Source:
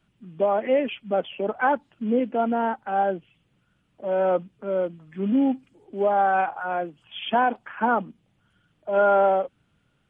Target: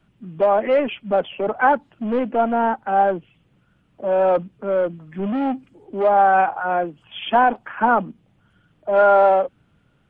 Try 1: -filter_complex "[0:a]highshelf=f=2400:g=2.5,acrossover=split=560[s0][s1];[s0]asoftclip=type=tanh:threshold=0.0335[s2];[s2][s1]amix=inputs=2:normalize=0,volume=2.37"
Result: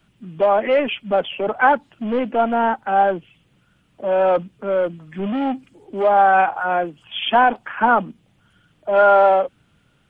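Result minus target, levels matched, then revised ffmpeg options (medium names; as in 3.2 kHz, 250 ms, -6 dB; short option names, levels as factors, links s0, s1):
4 kHz band +5.5 dB
-filter_complex "[0:a]highshelf=f=2400:g=-8,acrossover=split=560[s0][s1];[s0]asoftclip=type=tanh:threshold=0.0335[s2];[s2][s1]amix=inputs=2:normalize=0,volume=2.37"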